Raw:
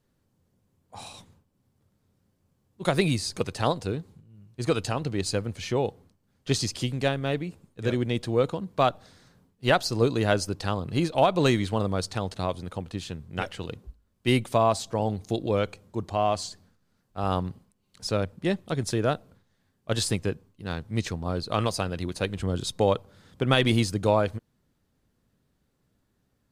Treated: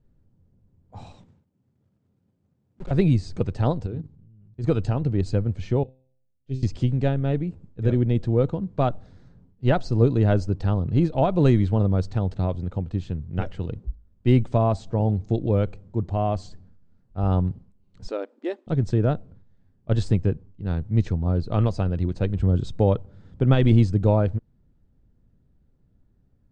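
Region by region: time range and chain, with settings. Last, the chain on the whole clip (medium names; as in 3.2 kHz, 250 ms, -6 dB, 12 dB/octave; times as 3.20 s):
1.12–2.91 s: block-companded coder 3-bit + high-pass 140 Hz + valve stage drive 37 dB, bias 0.55
3.86–4.64 s: hum notches 50/100/150/200/250/300 Hz + level held to a coarse grid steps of 12 dB
5.83–6.63 s: high-order bell 1.2 kHz -8 dB 1.2 oct + feedback comb 130 Hz, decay 0.65 s, mix 90% + upward expansion, over -52 dBFS
18.08–18.67 s: brick-wall FIR high-pass 240 Hz + bass shelf 330 Hz -6 dB
whole clip: steep low-pass 8.6 kHz 96 dB/octave; tilt EQ -4 dB/octave; band-stop 1.1 kHz, Q 16; trim -3.5 dB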